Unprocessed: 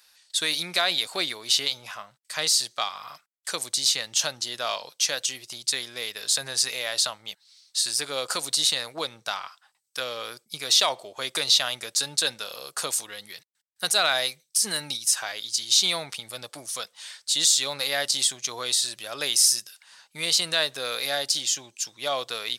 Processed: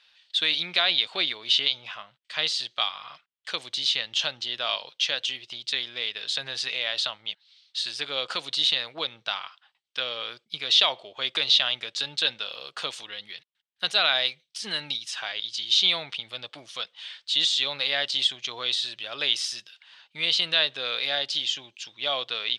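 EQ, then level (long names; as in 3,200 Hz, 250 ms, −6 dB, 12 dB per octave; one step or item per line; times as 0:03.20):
low-pass with resonance 3,200 Hz, resonance Q 3.1
−3.5 dB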